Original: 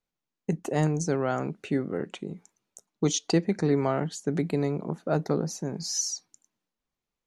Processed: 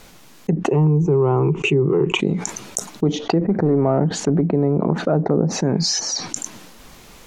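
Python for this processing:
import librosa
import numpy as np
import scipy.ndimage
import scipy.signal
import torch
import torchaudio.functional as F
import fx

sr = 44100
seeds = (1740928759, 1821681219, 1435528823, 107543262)

p1 = fx.leveller(x, sr, passes=1, at=(3.41, 4.41))
p2 = fx.env_lowpass_down(p1, sr, base_hz=820.0, full_db=-23.5)
p3 = fx.rider(p2, sr, range_db=4, speed_s=0.5)
p4 = p2 + (p3 * librosa.db_to_amplitude(-2.0))
p5 = fx.ripple_eq(p4, sr, per_octave=0.71, db=18, at=(0.71, 2.2))
p6 = fx.env_flatten(p5, sr, amount_pct=70)
y = p6 * librosa.db_to_amplitude(-3.0)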